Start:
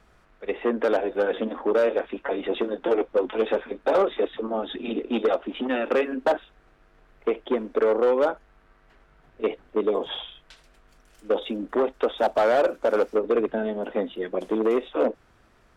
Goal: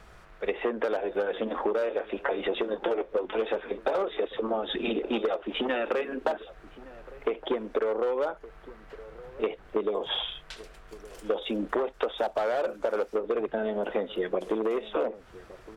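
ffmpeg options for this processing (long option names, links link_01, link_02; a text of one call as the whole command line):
ffmpeg -i in.wav -filter_complex "[0:a]equalizer=frequency=260:width=3.1:gain=-8.5,acompressor=threshold=-32dB:ratio=10,asplit=2[link_01][link_02];[link_02]adelay=1166,volume=-18dB,highshelf=frequency=4000:gain=-26.2[link_03];[link_01][link_03]amix=inputs=2:normalize=0,volume=7dB" out.wav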